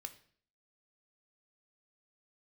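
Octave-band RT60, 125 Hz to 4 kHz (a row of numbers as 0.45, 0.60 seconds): 0.55, 0.60, 0.55, 0.50, 0.50, 0.50 seconds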